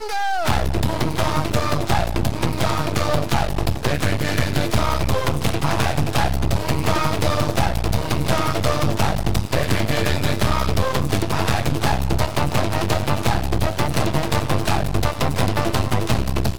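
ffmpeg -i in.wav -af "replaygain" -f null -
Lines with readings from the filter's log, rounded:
track_gain = +4.5 dB
track_peak = 0.407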